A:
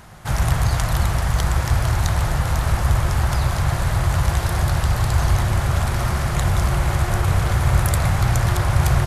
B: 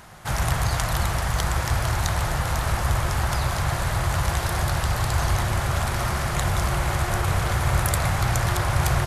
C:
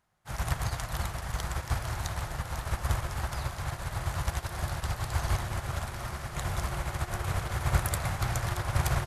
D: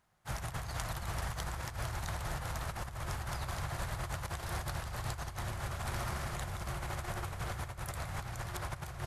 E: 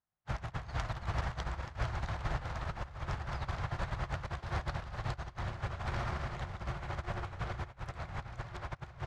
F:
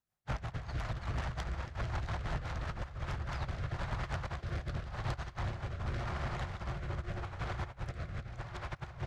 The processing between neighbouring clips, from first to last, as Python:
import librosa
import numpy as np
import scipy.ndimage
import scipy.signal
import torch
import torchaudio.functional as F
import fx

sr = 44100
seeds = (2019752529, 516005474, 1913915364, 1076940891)

y1 = fx.low_shelf(x, sr, hz=290.0, db=-6.0)
y2 = fx.upward_expand(y1, sr, threshold_db=-36.0, expansion=2.5)
y2 = y2 * 10.0 ** (-1.5 / 20.0)
y3 = fx.over_compress(y2, sr, threshold_db=-36.0, ratio=-1.0)
y3 = y3 * 10.0 ** (-3.0 / 20.0)
y4 = fx.air_absorb(y3, sr, metres=160.0)
y4 = fx.echo_feedback(y4, sr, ms=440, feedback_pct=53, wet_db=-12.0)
y4 = fx.upward_expand(y4, sr, threshold_db=-51.0, expansion=2.5)
y4 = y4 * 10.0 ** (6.0 / 20.0)
y5 = 10.0 ** (-33.0 / 20.0) * np.tanh(y4 / 10.0 ** (-33.0 / 20.0))
y5 = fx.rotary_switch(y5, sr, hz=5.5, then_hz=0.85, switch_at_s=2.79)
y5 = y5 * 10.0 ** (4.5 / 20.0)